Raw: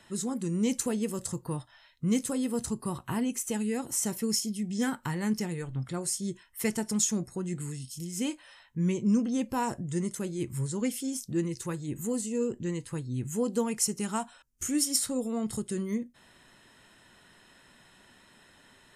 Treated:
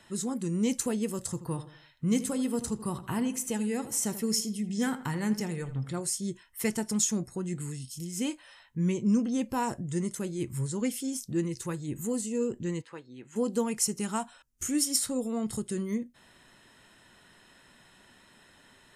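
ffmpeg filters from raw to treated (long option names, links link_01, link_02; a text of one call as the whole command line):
ffmpeg -i in.wav -filter_complex "[0:a]asettb=1/sr,asplit=3[link_01][link_02][link_03];[link_01]atrim=end=1.274[link_04];[link_02]atrim=start=1.27:end=6.01,asetpts=PTS-STARTPTS,afade=type=in:duration=0.004:curve=qsin,afade=type=out:start_time=4.736:duration=0.004:curve=qsin,asplit=2[link_05][link_06];[link_06]adelay=81,lowpass=frequency=3000:poles=1,volume=-13dB,asplit=2[link_07][link_08];[link_08]adelay=81,lowpass=frequency=3000:poles=1,volume=0.42,asplit=2[link_09][link_10];[link_10]adelay=81,lowpass=frequency=3000:poles=1,volume=0.42,asplit=2[link_11][link_12];[link_12]adelay=81,lowpass=frequency=3000:poles=1,volume=0.42[link_13];[link_05][link_07][link_09][link_11][link_13]amix=inputs=5:normalize=0,atrim=end_sample=209034[link_14];[link_03]atrim=start=6.006[link_15];[link_04][link_14]acrossfade=duration=0.004:curve1=hsin:curve2=qsin[link_16];[link_16][link_15]acrossfade=duration=0.004:curve1=qsin:curve2=hsin,asplit=3[link_17][link_18][link_19];[link_17]afade=type=out:start_time=12.81:duration=0.02[link_20];[link_18]highpass=460,lowpass=3300,afade=type=in:start_time=12.81:duration=0.02,afade=type=out:start_time=13.35:duration=0.02[link_21];[link_19]afade=type=in:start_time=13.35:duration=0.02[link_22];[link_20][link_21][link_22]amix=inputs=3:normalize=0" out.wav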